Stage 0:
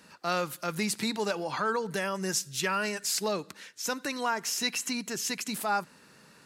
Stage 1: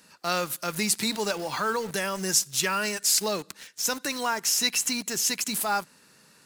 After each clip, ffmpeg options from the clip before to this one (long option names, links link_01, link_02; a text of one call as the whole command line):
ffmpeg -i in.wav -filter_complex "[0:a]highshelf=frequency=4100:gain=9,asplit=2[link_01][link_02];[link_02]acrusher=bits=5:mix=0:aa=0.000001,volume=-3dB[link_03];[link_01][link_03]amix=inputs=2:normalize=0,volume=-3.5dB" out.wav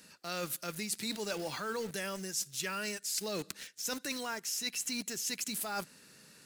ffmpeg -i in.wav -af "equalizer=frequency=970:width=1.6:gain=-7,areverse,acompressor=threshold=-34dB:ratio=6,areverse" out.wav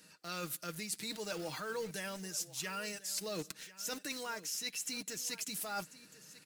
ffmpeg -i in.wav -af "aecho=1:1:6.4:0.42,aecho=1:1:1043:0.133,volume=-4dB" out.wav